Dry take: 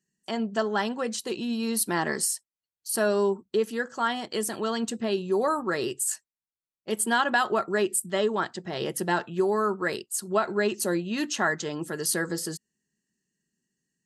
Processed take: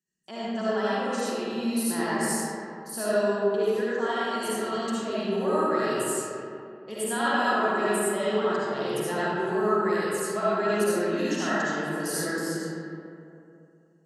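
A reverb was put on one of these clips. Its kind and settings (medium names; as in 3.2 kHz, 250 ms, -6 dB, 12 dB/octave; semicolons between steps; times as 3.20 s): algorithmic reverb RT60 2.7 s, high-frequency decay 0.45×, pre-delay 30 ms, DRR -10 dB; trim -10 dB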